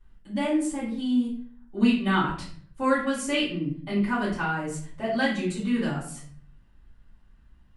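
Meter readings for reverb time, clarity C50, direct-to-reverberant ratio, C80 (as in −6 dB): 0.55 s, 4.5 dB, −12.0 dB, 9.0 dB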